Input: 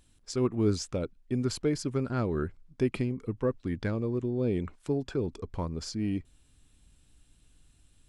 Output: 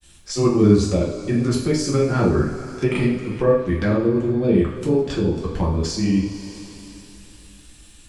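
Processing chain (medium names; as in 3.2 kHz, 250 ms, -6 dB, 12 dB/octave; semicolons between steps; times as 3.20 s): granulator, spray 32 ms, pitch spread up and down by 0 st; two-slope reverb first 0.49 s, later 3.4 s, from -18 dB, DRR -4.5 dB; tape noise reduction on one side only encoder only; trim +7 dB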